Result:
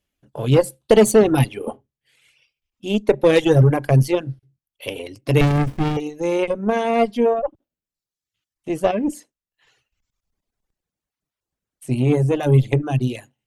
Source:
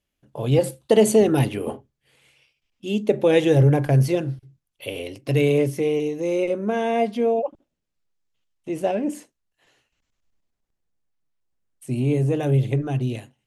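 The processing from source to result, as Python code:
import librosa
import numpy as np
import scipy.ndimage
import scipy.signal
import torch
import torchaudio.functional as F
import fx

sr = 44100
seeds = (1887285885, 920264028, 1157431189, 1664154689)

p1 = fx.cheby_harmonics(x, sr, harmonics=(5, 6, 7), levels_db=(-26, -24, -25), full_scale_db=-5.0)
p2 = fx.rider(p1, sr, range_db=10, speed_s=2.0)
p3 = p1 + F.gain(torch.from_numpy(p2), -3.0).numpy()
p4 = fx.dereverb_blind(p3, sr, rt60_s=0.95)
p5 = fx.running_max(p4, sr, window=65, at=(5.41, 5.97))
y = F.gain(torch.from_numpy(p5), -1.0).numpy()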